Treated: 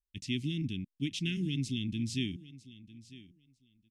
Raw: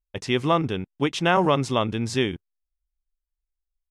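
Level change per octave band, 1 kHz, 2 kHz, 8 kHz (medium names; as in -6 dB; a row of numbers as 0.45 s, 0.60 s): under -40 dB, -14.5 dB, -8.0 dB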